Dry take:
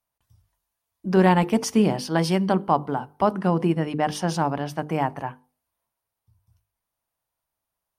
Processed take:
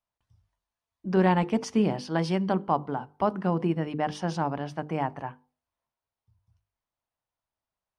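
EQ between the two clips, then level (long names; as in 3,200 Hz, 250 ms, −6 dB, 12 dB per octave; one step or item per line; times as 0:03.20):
high-frequency loss of the air 81 metres
−4.5 dB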